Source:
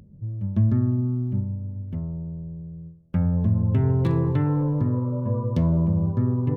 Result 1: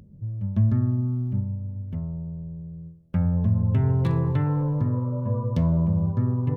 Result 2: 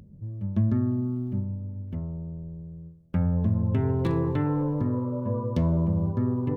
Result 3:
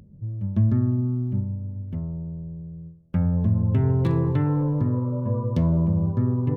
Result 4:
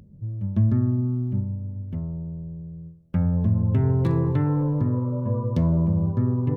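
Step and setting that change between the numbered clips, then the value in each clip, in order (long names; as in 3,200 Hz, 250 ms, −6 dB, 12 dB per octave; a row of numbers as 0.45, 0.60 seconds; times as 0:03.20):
dynamic equaliser, frequency: 330, 130, 9,900, 3,000 Hertz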